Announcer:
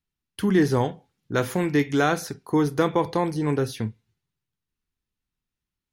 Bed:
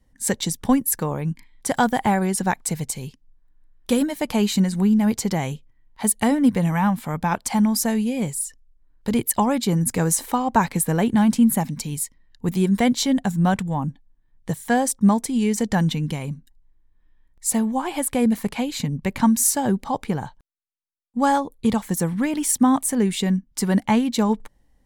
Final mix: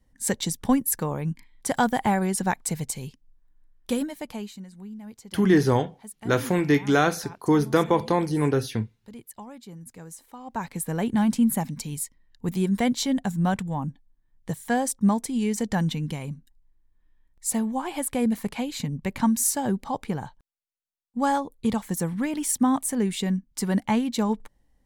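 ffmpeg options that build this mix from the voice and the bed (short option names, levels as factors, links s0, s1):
-filter_complex "[0:a]adelay=4950,volume=1.12[s0];[1:a]volume=5.31,afade=t=out:st=3.61:d=0.95:silence=0.112202,afade=t=in:st=10.35:d=0.84:silence=0.133352[s1];[s0][s1]amix=inputs=2:normalize=0"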